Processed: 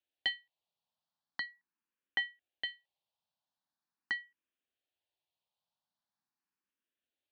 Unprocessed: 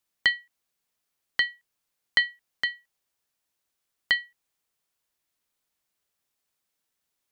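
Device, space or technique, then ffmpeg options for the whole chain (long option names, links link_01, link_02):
barber-pole phaser into a guitar amplifier: -filter_complex "[0:a]asplit=2[link_01][link_02];[link_02]afreqshift=0.42[link_03];[link_01][link_03]amix=inputs=2:normalize=1,asoftclip=type=tanh:threshold=-13.5dB,highpass=100,equalizer=frequency=120:width_type=q:width=4:gain=-4,equalizer=frequency=440:width_type=q:width=4:gain=-7,equalizer=frequency=840:width_type=q:width=4:gain=3,equalizer=frequency=1300:width_type=q:width=4:gain=-6,equalizer=frequency=2100:width_type=q:width=4:gain=-9,lowpass=frequency=4100:width=0.5412,lowpass=frequency=4100:width=1.3066,asplit=3[link_04][link_05][link_06];[link_04]afade=type=out:start_time=1.45:duration=0.02[link_07];[link_05]lowpass=4200,afade=type=in:start_time=1.45:duration=0.02,afade=type=out:start_time=2.67:duration=0.02[link_08];[link_06]afade=type=in:start_time=2.67:duration=0.02[link_09];[link_07][link_08][link_09]amix=inputs=3:normalize=0,volume=-3dB"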